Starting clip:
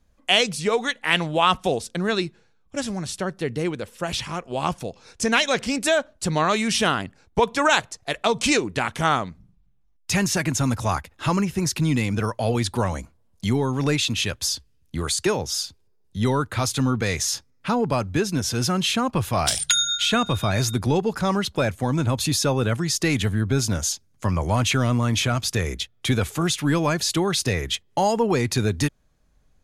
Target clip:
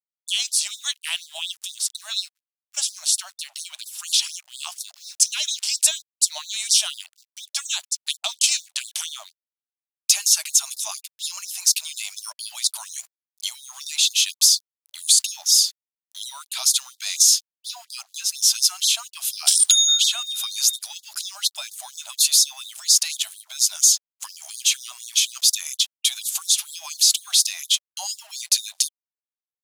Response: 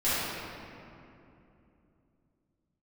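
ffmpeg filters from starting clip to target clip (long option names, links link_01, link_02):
-af "highpass=frequency=110:poles=1,acompressor=threshold=-23dB:ratio=16,aexciter=amount=7.7:drive=6.5:freq=2800,acrusher=bits=5:mix=0:aa=0.5,afftfilt=real='re*gte(b*sr/1024,570*pow(3600/570,0.5+0.5*sin(2*PI*4.2*pts/sr)))':imag='im*gte(b*sr/1024,570*pow(3600/570,0.5+0.5*sin(2*PI*4.2*pts/sr)))':win_size=1024:overlap=0.75,volume=-7.5dB"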